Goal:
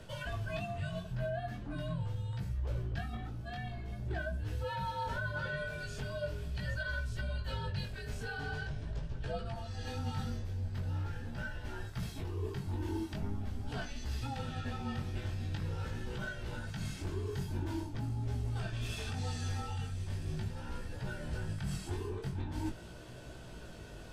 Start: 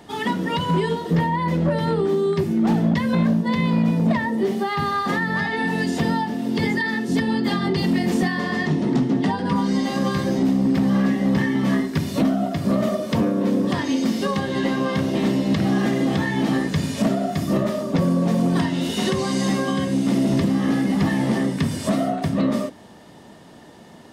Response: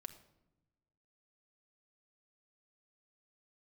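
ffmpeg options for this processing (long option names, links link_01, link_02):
-af "afreqshift=-290,areverse,acompressor=threshold=-31dB:ratio=10,areverse,flanger=delay=16:depth=6.2:speed=0.43"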